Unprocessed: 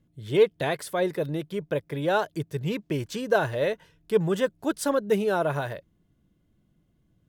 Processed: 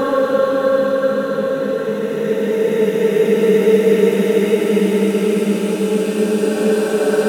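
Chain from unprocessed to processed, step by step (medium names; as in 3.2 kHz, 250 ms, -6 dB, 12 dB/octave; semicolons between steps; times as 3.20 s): echo that smears into a reverb 485 ms, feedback 44%, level -8 dB; Paulstretch 23×, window 0.25 s, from 4.96 s; trim +8 dB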